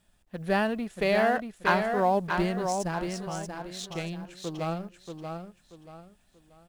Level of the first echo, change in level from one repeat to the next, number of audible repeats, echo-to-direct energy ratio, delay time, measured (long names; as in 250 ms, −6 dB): −5.5 dB, −10.0 dB, 3, −5.0 dB, 633 ms